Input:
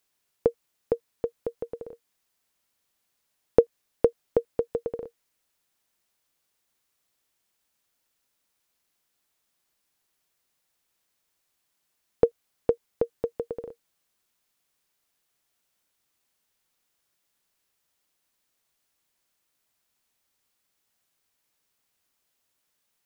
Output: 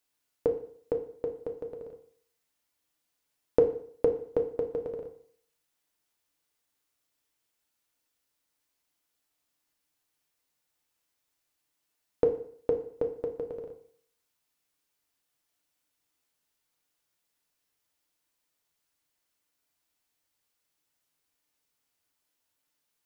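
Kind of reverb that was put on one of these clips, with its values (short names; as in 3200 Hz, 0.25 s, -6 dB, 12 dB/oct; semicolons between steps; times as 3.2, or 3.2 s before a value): FDN reverb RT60 0.58 s, low-frequency decay 0.95×, high-frequency decay 0.9×, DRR 3 dB; gain -5.5 dB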